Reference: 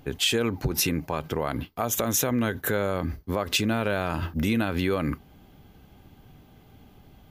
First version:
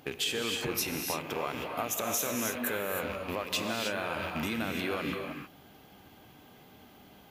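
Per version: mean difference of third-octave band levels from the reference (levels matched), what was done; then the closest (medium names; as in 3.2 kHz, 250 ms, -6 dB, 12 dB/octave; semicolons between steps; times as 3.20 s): 9.0 dB: rattle on loud lows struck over -36 dBFS, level -27 dBFS; high-pass 410 Hz 6 dB/octave; compression 2.5:1, threshold -36 dBFS, peak gain reduction 11 dB; gated-style reverb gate 340 ms rising, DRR 2 dB; trim +2 dB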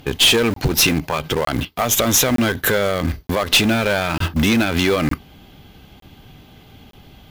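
4.0 dB: peaking EQ 3.4 kHz +8 dB 1.6 oct; valve stage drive 20 dB, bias 0.35; in parallel at -10 dB: bit crusher 5-bit; on the sum: crackling interface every 0.91 s, samples 1024, zero, from 0.54 s; trim +8.5 dB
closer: second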